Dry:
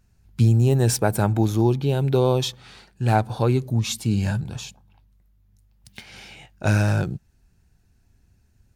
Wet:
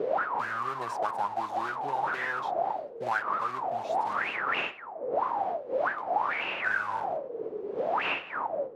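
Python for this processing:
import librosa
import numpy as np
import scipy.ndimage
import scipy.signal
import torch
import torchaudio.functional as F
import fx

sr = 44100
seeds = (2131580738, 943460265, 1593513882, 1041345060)

y = fx.block_float(x, sr, bits=3)
y = fx.dmg_wind(y, sr, seeds[0], corner_hz=600.0, level_db=-18.0)
y = fx.peak_eq(y, sr, hz=65.0, db=-5.5, octaves=1.3)
y = fx.auto_wah(y, sr, base_hz=370.0, top_hz=2700.0, q=14.0, full_db=-9.5, direction='up')
y = fx.band_squash(y, sr, depth_pct=70)
y = y * librosa.db_to_amplitude(7.0)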